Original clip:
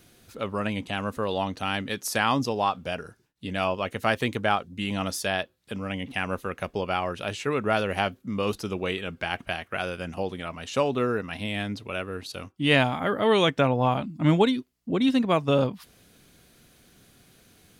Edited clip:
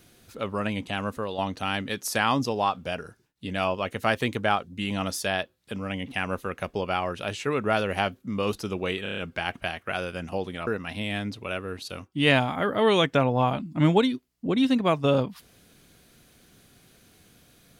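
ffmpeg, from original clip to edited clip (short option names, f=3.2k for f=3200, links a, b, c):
-filter_complex "[0:a]asplit=8[a][b][c][d][e][f][g][h];[a]atrim=end=1.38,asetpts=PTS-STARTPTS,afade=t=out:st=1.08:d=0.3:silence=0.446684[i];[b]atrim=start=1.38:end=9.062,asetpts=PTS-STARTPTS,afade=t=in:d=0.004:c=hsin:silence=0.446684[j];[c]atrim=start=9.028:end=9.062[k];[d]atrim=start=9.028:end=9.062[l];[e]atrim=start=9.028:end=9.062[m];[f]atrim=start=9.028:end=9.062[n];[g]atrim=start=9.028:end=10.522[o];[h]atrim=start=11.108[p];[i][j]concat=n=2:v=0:a=1[q];[q][k]acrossfade=d=0.004:c1=hsin:c2=hsin[r];[r][l]acrossfade=d=0.004:c1=hsin:c2=hsin[s];[s][m]acrossfade=d=0.004:c1=hsin:c2=hsin[t];[t][n]acrossfade=d=0.004:c1=hsin:c2=hsin[u];[u][o]acrossfade=d=0.004:c1=hsin:c2=hsin[v];[v][p]acrossfade=d=0.004:c1=hsin:c2=hsin"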